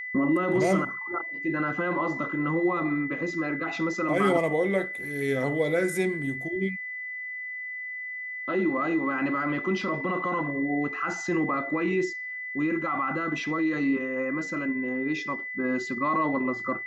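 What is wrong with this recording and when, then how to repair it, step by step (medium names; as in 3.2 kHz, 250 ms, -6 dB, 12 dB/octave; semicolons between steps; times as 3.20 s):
whine 2 kHz -33 dBFS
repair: band-stop 2 kHz, Q 30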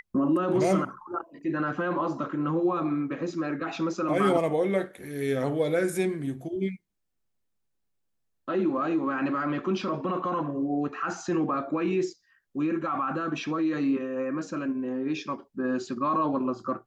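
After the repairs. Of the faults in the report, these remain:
nothing left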